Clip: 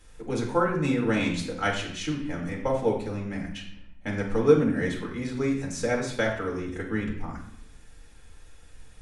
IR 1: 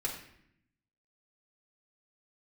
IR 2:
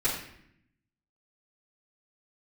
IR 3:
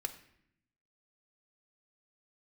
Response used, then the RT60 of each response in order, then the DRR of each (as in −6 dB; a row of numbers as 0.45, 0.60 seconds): 1; 0.70, 0.70, 0.70 seconds; −2.5, −10.5, 7.0 decibels